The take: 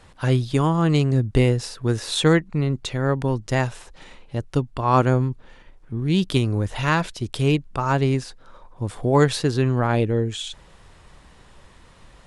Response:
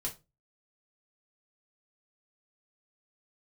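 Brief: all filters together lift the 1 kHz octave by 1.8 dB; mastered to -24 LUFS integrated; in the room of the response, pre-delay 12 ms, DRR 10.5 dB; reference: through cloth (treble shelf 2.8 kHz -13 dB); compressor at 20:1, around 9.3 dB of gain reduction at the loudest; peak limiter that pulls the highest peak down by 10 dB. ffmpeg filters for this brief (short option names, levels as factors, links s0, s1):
-filter_complex "[0:a]equalizer=f=1000:t=o:g=4,acompressor=threshold=0.112:ratio=20,alimiter=limit=0.1:level=0:latency=1,asplit=2[s0][s1];[1:a]atrim=start_sample=2205,adelay=12[s2];[s1][s2]afir=irnorm=-1:irlink=0,volume=0.282[s3];[s0][s3]amix=inputs=2:normalize=0,highshelf=f=2800:g=-13,volume=2.24"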